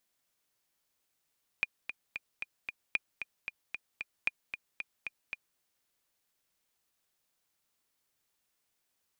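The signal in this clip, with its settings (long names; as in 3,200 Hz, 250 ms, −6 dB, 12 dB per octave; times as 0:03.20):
click track 227 BPM, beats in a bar 5, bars 3, 2,430 Hz, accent 9 dB −15 dBFS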